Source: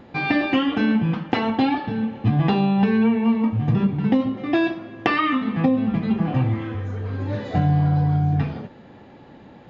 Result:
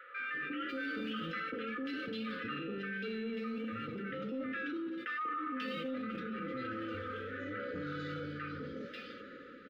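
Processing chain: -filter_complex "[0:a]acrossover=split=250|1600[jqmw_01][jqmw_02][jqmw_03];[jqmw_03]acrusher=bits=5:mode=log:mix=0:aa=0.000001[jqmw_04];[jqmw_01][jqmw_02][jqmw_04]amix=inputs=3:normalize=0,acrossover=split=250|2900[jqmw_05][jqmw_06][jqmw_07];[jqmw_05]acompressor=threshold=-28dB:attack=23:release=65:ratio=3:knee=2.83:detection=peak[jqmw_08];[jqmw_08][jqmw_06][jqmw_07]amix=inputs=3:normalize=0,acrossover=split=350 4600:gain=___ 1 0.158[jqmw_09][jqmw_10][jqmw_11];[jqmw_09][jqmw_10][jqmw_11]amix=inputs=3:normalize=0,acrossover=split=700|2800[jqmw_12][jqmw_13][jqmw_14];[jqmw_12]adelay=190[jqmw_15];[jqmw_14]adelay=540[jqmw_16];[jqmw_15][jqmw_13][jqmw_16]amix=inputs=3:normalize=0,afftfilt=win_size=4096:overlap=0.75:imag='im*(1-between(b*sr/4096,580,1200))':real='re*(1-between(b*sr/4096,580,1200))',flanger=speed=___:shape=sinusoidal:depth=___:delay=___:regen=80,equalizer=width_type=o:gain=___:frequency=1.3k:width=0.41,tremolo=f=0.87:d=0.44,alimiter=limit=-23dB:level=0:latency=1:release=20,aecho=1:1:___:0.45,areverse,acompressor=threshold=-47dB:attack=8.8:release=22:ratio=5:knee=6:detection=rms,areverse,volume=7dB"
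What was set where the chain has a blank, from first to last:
0.141, 1.3, 6.7, 8.7, 10.5, 4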